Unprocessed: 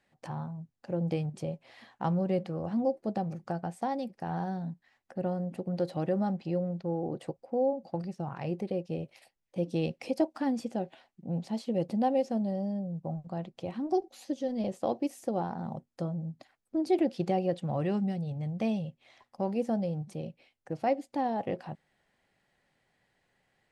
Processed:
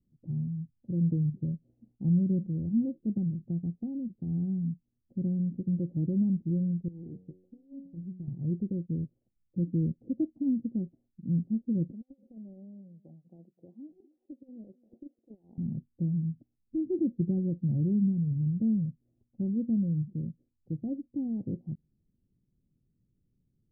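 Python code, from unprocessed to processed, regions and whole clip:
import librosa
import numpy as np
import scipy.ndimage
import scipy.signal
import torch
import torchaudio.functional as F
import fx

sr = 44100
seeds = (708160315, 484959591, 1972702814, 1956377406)

y = fx.chain(x, sr, fx.over_compress(threshold_db=-33.0, ratio=-0.5),
    fx.comb_fb(f0_hz=92.0, decay_s=0.64, harmonics='all', damping=0.0, mix_pct=80), at=(6.88, 8.28))
y = fx.chain(y, sr, fx.highpass(hz=730.0, slope=12),
    fx.over_compress(threshold_db=-42.0, ratio=-0.5),
    fx.echo_single(ms=252, db=-21.5), at=(11.92, 15.58))
y = scipy.signal.sosfilt(scipy.signal.cheby2(4, 70, 1400.0, 'lowpass', fs=sr, output='sos'), y)
y = fx.low_shelf(y, sr, hz=190.0, db=10.0)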